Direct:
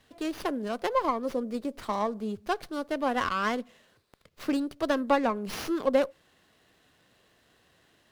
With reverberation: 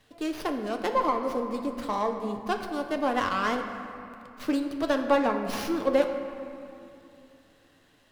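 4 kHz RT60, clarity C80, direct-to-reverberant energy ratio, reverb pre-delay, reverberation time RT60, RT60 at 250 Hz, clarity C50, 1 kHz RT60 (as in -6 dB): 1.6 s, 7.5 dB, 4.0 dB, 7 ms, 2.7 s, 3.4 s, 6.5 dB, 2.8 s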